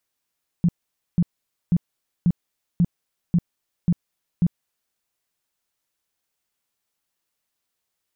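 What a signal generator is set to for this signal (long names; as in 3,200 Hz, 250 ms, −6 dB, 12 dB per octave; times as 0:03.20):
tone bursts 173 Hz, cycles 8, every 0.54 s, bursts 8, −13.5 dBFS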